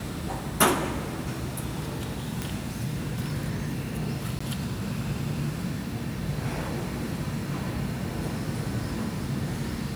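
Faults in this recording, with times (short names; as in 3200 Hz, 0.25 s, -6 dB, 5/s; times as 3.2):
2.42 pop
4.39–4.41 gap 15 ms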